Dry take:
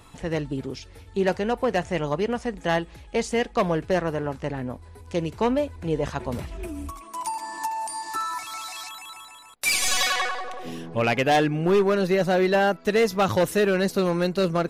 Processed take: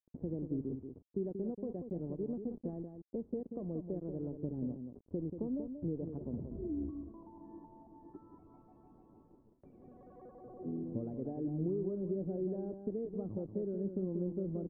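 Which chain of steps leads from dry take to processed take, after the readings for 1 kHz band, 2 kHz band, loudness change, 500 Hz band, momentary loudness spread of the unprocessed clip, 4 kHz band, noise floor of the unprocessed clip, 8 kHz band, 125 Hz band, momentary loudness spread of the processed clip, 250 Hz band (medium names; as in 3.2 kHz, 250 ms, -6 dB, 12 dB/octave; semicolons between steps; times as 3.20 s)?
-32.0 dB, under -40 dB, -15.0 dB, -17.0 dB, 14 LU, under -40 dB, -47 dBFS, under -40 dB, -11.5 dB, 17 LU, -10.5 dB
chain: high-pass 59 Hz 12 dB/octave; bass shelf 96 Hz -10 dB; compression 4:1, threshold -33 dBFS, peak gain reduction 14 dB; bit crusher 7-bit; four-pole ladder low-pass 420 Hz, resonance 25%; delay 184 ms -7.5 dB; trim +4.5 dB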